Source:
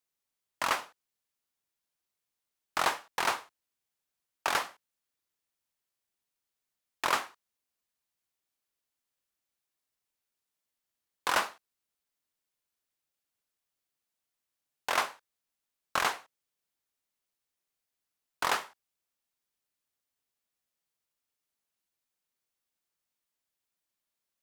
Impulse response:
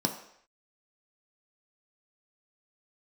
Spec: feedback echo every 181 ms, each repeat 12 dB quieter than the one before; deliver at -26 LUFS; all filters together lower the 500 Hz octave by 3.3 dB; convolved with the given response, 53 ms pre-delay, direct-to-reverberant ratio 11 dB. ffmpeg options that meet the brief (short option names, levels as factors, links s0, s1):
-filter_complex "[0:a]equalizer=f=500:t=o:g=-4.5,aecho=1:1:181|362|543:0.251|0.0628|0.0157,asplit=2[s0][s1];[1:a]atrim=start_sample=2205,adelay=53[s2];[s1][s2]afir=irnorm=-1:irlink=0,volume=0.126[s3];[s0][s3]amix=inputs=2:normalize=0,volume=2.24"